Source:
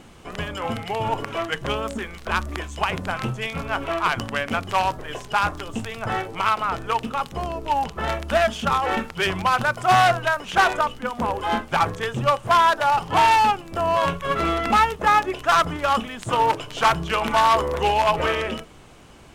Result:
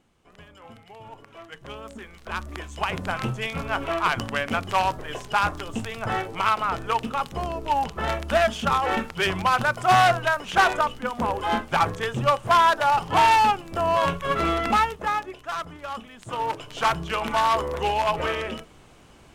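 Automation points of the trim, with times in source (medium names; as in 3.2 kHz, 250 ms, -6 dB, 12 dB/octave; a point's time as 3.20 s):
1.26 s -19 dB
1.77 s -12.5 dB
3.10 s -1 dB
14.64 s -1 dB
15.44 s -13 dB
15.99 s -13 dB
16.79 s -4 dB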